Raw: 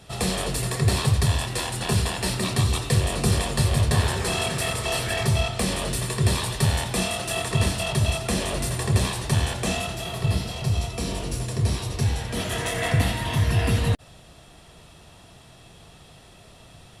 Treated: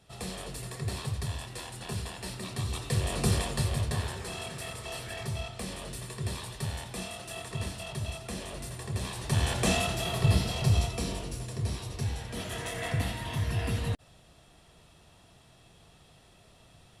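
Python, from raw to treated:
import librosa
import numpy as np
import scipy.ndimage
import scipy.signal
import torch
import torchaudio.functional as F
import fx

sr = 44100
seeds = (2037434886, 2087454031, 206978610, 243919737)

y = fx.gain(x, sr, db=fx.line((2.5, -13.0), (3.25, -4.5), (4.26, -13.0), (8.95, -13.0), (9.6, -0.5), (10.77, -0.5), (11.35, -9.0)))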